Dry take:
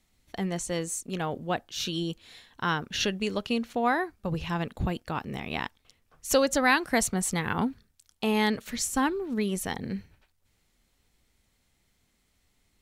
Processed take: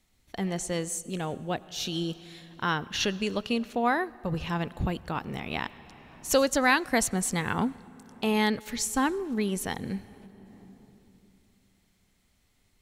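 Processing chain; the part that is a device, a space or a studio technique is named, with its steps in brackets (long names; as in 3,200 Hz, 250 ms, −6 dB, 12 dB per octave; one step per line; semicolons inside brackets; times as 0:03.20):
compressed reverb return (on a send at −6 dB: convolution reverb RT60 2.5 s, pre-delay 84 ms + downward compressor 10 to 1, threshold −40 dBFS, peak gain reduction 21 dB)
0:00.98–0:01.92: on the sum: parametric band 1,300 Hz −4.5 dB 1.9 octaves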